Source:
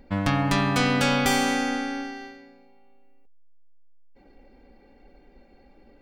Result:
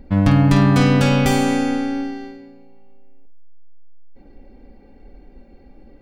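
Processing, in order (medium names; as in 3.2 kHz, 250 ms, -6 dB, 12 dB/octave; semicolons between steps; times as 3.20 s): bass shelf 410 Hz +11 dB; on a send: flutter echo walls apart 8.7 m, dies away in 0.28 s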